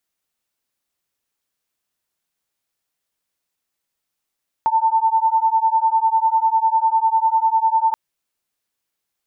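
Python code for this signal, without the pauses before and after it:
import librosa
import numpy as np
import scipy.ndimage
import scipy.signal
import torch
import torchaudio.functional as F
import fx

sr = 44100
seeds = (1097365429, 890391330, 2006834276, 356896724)

y = fx.two_tone_beats(sr, length_s=3.28, hz=889.0, beat_hz=10.0, level_db=-17.0)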